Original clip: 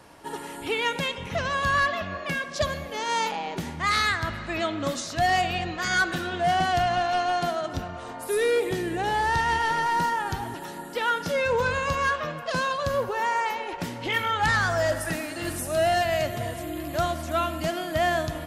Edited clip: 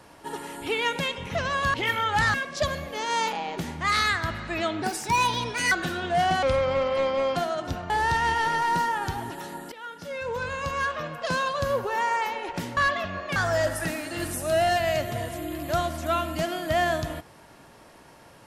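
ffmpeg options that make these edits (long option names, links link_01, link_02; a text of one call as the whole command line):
ffmpeg -i in.wav -filter_complex "[0:a]asplit=11[link_01][link_02][link_03][link_04][link_05][link_06][link_07][link_08][link_09][link_10][link_11];[link_01]atrim=end=1.742[link_12];[link_02]atrim=start=14.008:end=14.612[link_13];[link_03]atrim=start=2.328:end=4.814[link_14];[link_04]atrim=start=4.81:end=6.01,asetpts=PTS-STARTPTS,asetrate=59094,aresample=44100[link_15];[link_05]atrim=start=6.006:end=6.724[link_16];[link_06]atrim=start=6.72:end=7.42,asetpts=PTS-STARTPTS,asetrate=33075,aresample=44100[link_17];[link_07]atrim=start=7.416:end=7.962[link_18];[link_08]atrim=start=9.138:end=10.96,asetpts=PTS-STARTPTS,afade=type=out:start_time=1.818:duration=0.004:curve=hsin:silence=0.11885[link_19];[link_09]atrim=start=10.96:end=14.012,asetpts=PTS-STARTPTS,afade=type=in:duration=1.6:silence=0.11885[link_20];[link_10]atrim=start=1.738:end=2.332[link_21];[link_11]atrim=start=14.608[link_22];[link_12][link_13]acrossfade=duration=0.004:curve1=hsin:curve2=hsin[link_23];[link_23][link_14]acrossfade=duration=0.004:curve1=hsin:curve2=hsin[link_24];[link_24][link_15]acrossfade=duration=0.004:curve1=hsin:curve2=hsin[link_25];[link_25][link_16]acrossfade=duration=0.004:curve1=hsin:curve2=hsin[link_26];[link_26][link_17]acrossfade=duration=0.004:curve1=hsin:curve2=hsin[link_27];[link_27][link_18]acrossfade=duration=0.004:curve1=hsin:curve2=hsin[link_28];[link_19][link_20]concat=n=2:v=0:a=1[link_29];[link_28][link_29]acrossfade=duration=0.004:curve1=hsin:curve2=hsin[link_30];[link_30][link_21]acrossfade=duration=0.004:curve1=hsin:curve2=hsin[link_31];[link_31][link_22]acrossfade=duration=0.004:curve1=hsin:curve2=hsin" out.wav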